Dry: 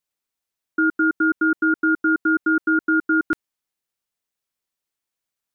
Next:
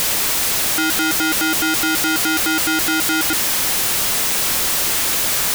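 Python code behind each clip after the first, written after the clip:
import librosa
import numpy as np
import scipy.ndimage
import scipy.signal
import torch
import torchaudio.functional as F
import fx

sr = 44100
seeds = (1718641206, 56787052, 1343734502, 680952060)

y = np.sign(x) * np.sqrt(np.mean(np.square(x)))
y = y * librosa.db_to_amplitude(6.0)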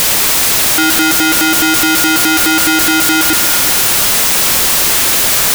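y = fx.echo_alternate(x, sr, ms=119, hz=1700.0, feedback_pct=77, wet_db=-12.0)
y = y * librosa.db_to_amplitude(7.0)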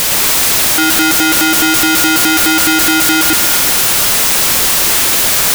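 y = fx.block_float(x, sr, bits=3)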